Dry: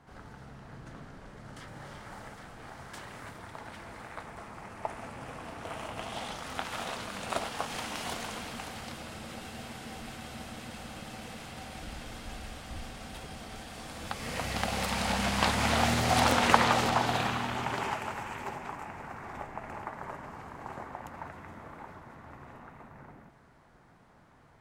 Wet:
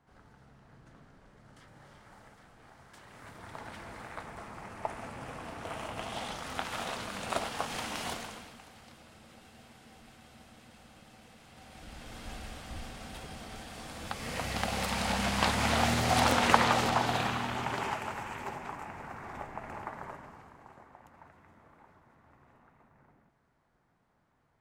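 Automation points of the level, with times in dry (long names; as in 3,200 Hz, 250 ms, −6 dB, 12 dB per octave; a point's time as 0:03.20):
0:02.99 −10 dB
0:03.55 0 dB
0:08.08 0 dB
0:08.60 −12.5 dB
0:11.41 −12.5 dB
0:12.27 −1 dB
0:19.97 −1 dB
0:20.74 −13 dB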